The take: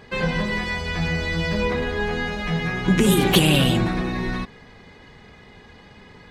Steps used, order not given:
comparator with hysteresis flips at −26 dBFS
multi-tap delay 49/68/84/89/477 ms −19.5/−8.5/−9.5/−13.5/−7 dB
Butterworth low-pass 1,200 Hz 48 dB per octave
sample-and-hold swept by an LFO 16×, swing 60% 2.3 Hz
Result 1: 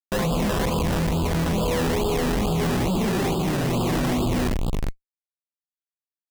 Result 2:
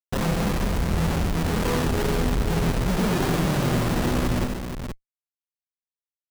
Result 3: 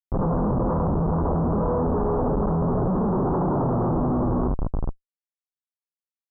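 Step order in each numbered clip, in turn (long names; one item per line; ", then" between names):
multi-tap delay, then comparator with hysteresis, then Butterworth low-pass, then sample-and-hold swept by an LFO
Butterworth low-pass, then comparator with hysteresis, then sample-and-hold swept by an LFO, then multi-tap delay
sample-and-hold swept by an LFO, then multi-tap delay, then comparator with hysteresis, then Butterworth low-pass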